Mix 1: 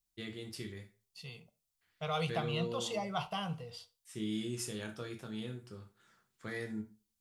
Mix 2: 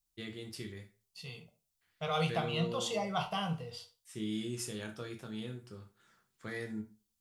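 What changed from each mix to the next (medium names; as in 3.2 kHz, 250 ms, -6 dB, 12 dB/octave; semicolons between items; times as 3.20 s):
second voice: send +9.0 dB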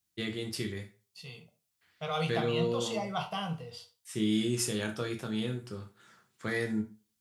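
first voice +8.5 dB; master: add high-pass 78 Hz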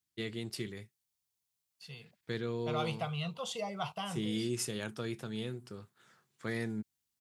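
second voice: entry +0.65 s; reverb: off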